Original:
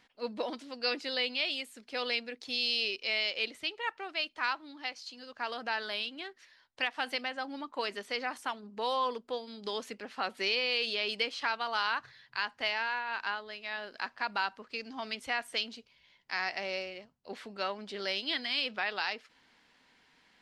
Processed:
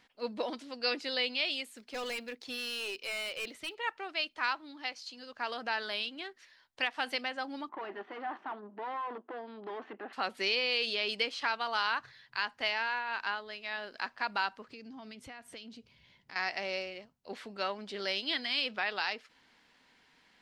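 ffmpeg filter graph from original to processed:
-filter_complex "[0:a]asettb=1/sr,asplit=3[a][b][c];[a]atrim=end=1.654[d];[b]atrim=start=1.65:end=3.75,asetpts=PTS-STARTPTS,afade=t=in:d=0.004:c=qsin,afade=t=out:st=2.096:d=0.004:c=qsin,acrossover=split=3400[e][f];[f]acompressor=threshold=-43dB:ratio=4:attack=1:release=60[g];[e][g]amix=inputs=2:normalize=0,acrusher=bits=8:mode=log:mix=0:aa=0.000001,asoftclip=type=hard:threshold=-33.5dB[h];[c]atrim=start=3.746[i];[d][h]acrossfade=d=0.004:c1=hsin:c2=qsin[j];[j][i]acrossfade=d=0.004:c1=qsin:c2=hsin,asettb=1/sr,asplit=3[k][l][m];[k]atrim=end=7.694[n];[l]atrim=start=7.69:end=10.13,asetpts=PTS-STARTPTS,afade=t=in:d=0.004:c=qsin,afade=t=out:st=2.436:d=0.004:c=qsin,aeval=exprs='(tanh(178*val(0)+0.65)-tanh(0.65))/178':c=same,highpass=290,equalizer=f=340:t=q:w=4:g=10,equalizer=f=510:t=q:w=4:g=-4,equalizer=f=770:t=q:w=4:g=8,equalizer=f=1.1k:t=q:w=4:g=4,equalizer=f=1.7k:t=q:w=4:g=3,equalizer=f=2.3k:t=q:w=4:g=-7,lowpass=f=2.5k:w=0.5412,lowpass=f=2.5k:w=1.3066,acontrast=49[o];[m]atrim=start=10.126[p];[n][o]acrossfade=d=0.004:c1=hsin:c2=qsin[q];[q][p]acrossfade=d=0.004:c1=qsin:c2=hsin,asettb=1/sr,asplit=3[r][s][t];[r]atrim=end=14.684[u];[s]atrim=start=14.68:end=16.36,asetpts=PTS-STARTPTS,afade=t=in:d=0.004:c=qsin,afade=t=out:st=1.676:d=0.004:c=qsin,equalizer=f=120:w=0.41:g=14,acompressor=threshold=-49dB:ratio=3:attack=3.2:release=140:knee=1:detection=peak[v];[t]atrim=start=16.356[w];[u][v]acrossfade=d=0.004:c1=hsin:c2=qsin[x];[x][w]acrossfade=d=0.004:c1=qsin:c2=hsin"

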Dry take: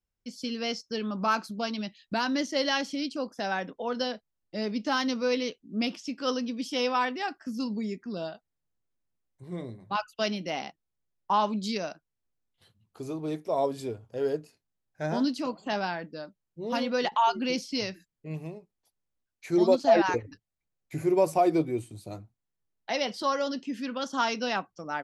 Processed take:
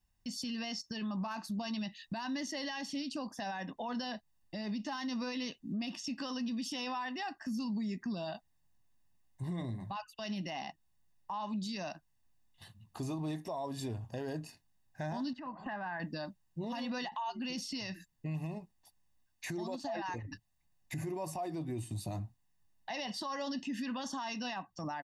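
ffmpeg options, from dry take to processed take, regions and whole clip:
-filter_complex "[0:a]asettb=1/sr,asplit=3[a][b][c];[a]atrim=end=15.334[d];[b]atrim=start=15.33:end=16,asetpts=PTS-STARTPTS,afade=t=in:d=0.004:c=qsin,afade=t=out:st=0.666:d=0.004:c=qsin,lowpass=f=1.6k:t=q:w=2.4,acompressor=threshold=-45dB:ratio=4:attack=3.2:release=140:knee=1:detection=peak[e];[c]atrim=start=15.996[f];[d][e]acrossfade=d=0.004:c1=hsin:c2=qsin[g];[g][f]acrossfade=d=0.004:c1=qsin:c2=hsin,aecho=1:1:1.1:0.72,acompressor=threshold=-38dB:ratio=5,alimiter=level_in=13dB:limit=-24dB:level=0:latency=1:release=30,volume=-13dB,volume=6dB"

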